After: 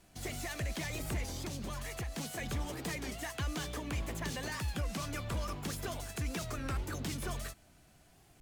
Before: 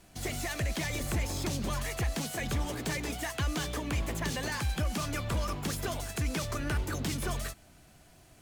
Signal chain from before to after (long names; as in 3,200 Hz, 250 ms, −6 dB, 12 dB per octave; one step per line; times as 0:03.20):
0:01.26–0:02.18: downward compressor, threshold −31 dBFS, peak gain reduction 5 dB
wow of a warped record 33 1/3 rpm, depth 160 cents
level −5 dB